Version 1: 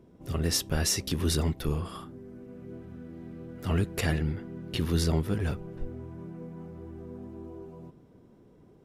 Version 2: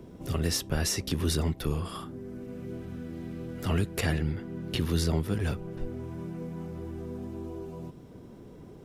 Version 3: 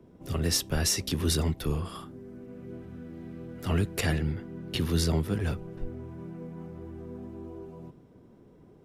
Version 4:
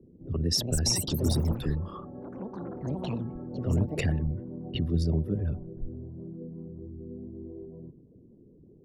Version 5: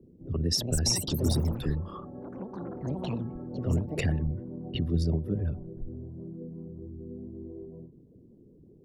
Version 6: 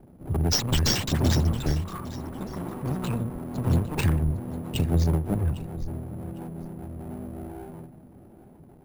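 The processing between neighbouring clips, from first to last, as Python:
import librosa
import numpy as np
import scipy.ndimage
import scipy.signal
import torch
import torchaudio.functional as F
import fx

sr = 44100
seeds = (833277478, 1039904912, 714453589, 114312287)

y1 = fx.band_squash(x, sr, depth_pct=40)
y2 = fx.band_widen(y1, sr, depth_pct=40)
y3 = fx.envelope_sharpen(y2, sr, power=2.0)
y3 = fx.echo_pitch(y3, sr, ms=381, semitones=7, count=3, db_per_echo=-6.0)
y3 = fx.env_lowpass(y3, sr, base_hz=630.0, full_db=-23.5)
y4 = fx.end_taper(y3, sr, db_per_s=130.0)
y5 = fx.lower_of_two(y4, sr, delay_ms=0.76)
y5 = fx.echo_feedback(y5, sr, ms=805, feedback_pct=25, wet_db=-16.5)
y5 = np.repeat(y5[::4], 4)[:len(y5)]
y5 = y5 * 10.0 ** (5.0 / 20.0)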